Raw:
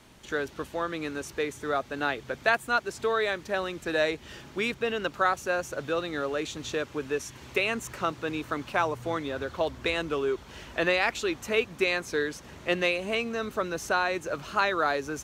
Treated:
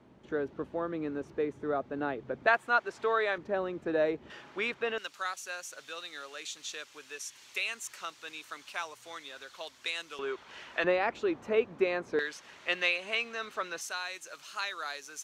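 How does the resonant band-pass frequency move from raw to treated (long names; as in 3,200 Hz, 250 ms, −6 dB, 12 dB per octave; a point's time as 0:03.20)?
resonant band-pass, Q 0.57
300 Hz
from 0:02.47 1,000 Hz
from 0:03.38 370 Hz
from 0:04.30 1,200 Hz
from 0:04.98 6,800 Hz
from 0:10.19 1,800 Hz
from 0:10.84 480 Hz
from 0:12.19 2,600 Hz
from 0:13.81 7,500 Hz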